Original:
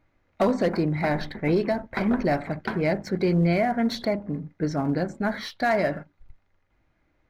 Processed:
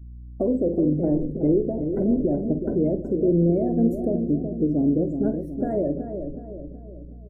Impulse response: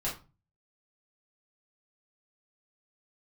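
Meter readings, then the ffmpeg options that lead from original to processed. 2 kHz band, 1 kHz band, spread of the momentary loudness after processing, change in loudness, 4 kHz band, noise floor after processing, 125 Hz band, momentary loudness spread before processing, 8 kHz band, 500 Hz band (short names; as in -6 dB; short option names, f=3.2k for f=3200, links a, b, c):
under -25 dB, -11.5 dB, 14 LU, +2.0 dB, under -40 dB, -40 dBFS, +1.0 dB, 7 LU, n/a, +1.5 dB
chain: -filter_complex "[0:a]firequalizer=gain_entry='entry(200,0);entry(300,12);entry(550,7);entry(860,-15);entry(1400,-14);entry(3700,-25);entry(7800,12)':delay=0.05:min_phase=1,alimiter=limit=-13dB:level=0:latency=1:release=265,aeval=exprs='val(0)+0.00631*(sin(2*PI*60*n/s)+sin(2*PI*2*60*n/s)/2+sin(2*PI*3*60*n/s)/3+sin(2*PI*4*60*n/s)/4+sin(2*PI*5*60*n/s)/5)':c=same,lowshelf=f=200:g=11,afftdn=nr=24:nf=-37,asplit=2[a][b];[b]adelay=47,volume=-12dB[c];[a][c]amix=inputs=2:normalize=0,asplit=2[d][e];[e]adelay=372,lowpass=f=1k:p=1,volume=-7dB,asplit=2[f][g];[g]adelay=372,lowpass=f=1k:p=1,volume=0.53,asplit=2[h][i];[i]adelay=372,lowpass=f=1k:p=1,volume=0.53,asplit=2[j][k];[k]adelay=372,lowpass=f=1k:p=1,volume=0.53,asplit=2[l][m];[m]adelay=372,lowpass=f=1k:p=1,volume=0.53,asplit=2[n][o];[o]adelay=372,lowpass=f=1k:p=1,volume=0.53[p];[d][f][h][j][l][n][p]amix=inputs=7:normalize=0,volume=-4dB"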